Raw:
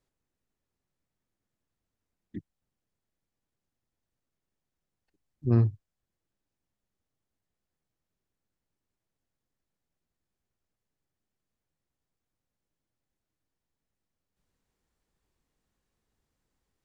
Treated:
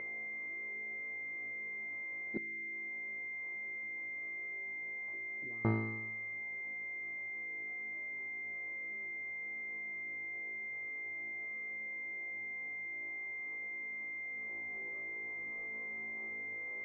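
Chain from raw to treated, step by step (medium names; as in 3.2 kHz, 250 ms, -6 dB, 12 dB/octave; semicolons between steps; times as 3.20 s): spectral levelling over time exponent 0.6; flutter echo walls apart 3.1 m, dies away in 0.96 s; upward compressor, threshold -48 dBFS; high-pass 470 Hz 12 dB/octave; 2.37–5.65 s: compression 8:1, threshold -59 dBFS, peak gain reduction 28 dB; class-D stage that switches slowly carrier 2.1 kHz; trim +5 dB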